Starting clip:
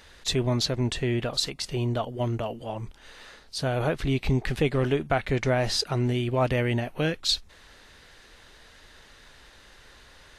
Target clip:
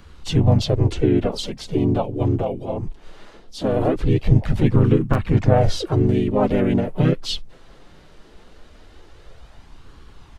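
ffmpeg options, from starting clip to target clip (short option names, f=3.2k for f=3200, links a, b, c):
-filter_complex "[0:a]tiltshelf=f=1.2k:g=6.5,flanger=delay=0.7:depth=5.3:regen=0:speed=0.2:shape=sinusoidal,asplit=4[a][b][c][d];[b]asetrate=35002,aresample=44100,atempo=1.25992,volume=0dB[e];[c]asetrate=37084,aresample=44100,atempo=1.18921,volume=-15dB[f];[d]asetrate=52444,aresample=44100,atempo=0.840896,volume=-7dB[g];[a][e][f][g]amix=inputs=4:normalize=0,acrossover=split=210|1500|1900[h][i][j][k];[j]acrusher=bits=4:mix=0:aa=0.000001[l];[h][i][l][k]amix=inputs=4:normalize=0,volume=3dB"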